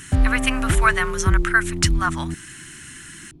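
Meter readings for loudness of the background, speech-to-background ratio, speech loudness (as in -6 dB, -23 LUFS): -24.0 LUFS, 2.0 dB, -22.0 LUFS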